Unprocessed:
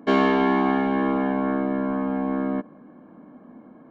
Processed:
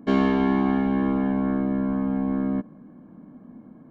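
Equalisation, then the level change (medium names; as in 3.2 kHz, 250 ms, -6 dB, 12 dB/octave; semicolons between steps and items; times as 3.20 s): tone controls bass +14 dB, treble +3 dB; -6.0 dB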